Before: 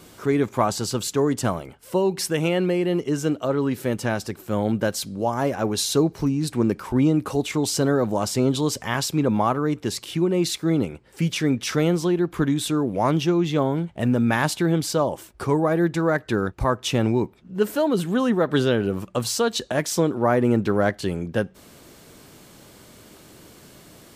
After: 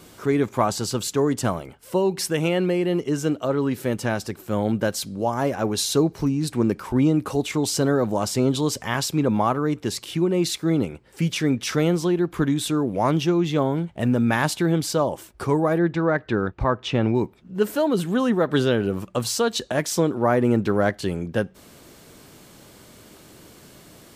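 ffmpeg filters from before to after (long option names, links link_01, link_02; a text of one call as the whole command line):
ffmpeg -i in.wav -filter_complex "[0:a]asettb=1/sr,asplit=3[link_01][link_02][link_03];[link_01]atrim=end=15.784[link_04];[link_02]atrim=start=15.78:end=17.15,asetpts=PTS-STARTPTS,afade=type=in:duration=0.004:curve=qsin,afade=type=out:start_time=1.366:duration=0.004:curve=qsin,lowpass=3500[link_05];[link_03]atrim=start=17.146[link_06];[link_04][link_05]acrossfade=duration=0.004:curve1=hsin:curve2=qsin[link_07];[link_07][link_06]acrossfade=duration=0.004:curve1=qsin:curve2=hsin" out.wav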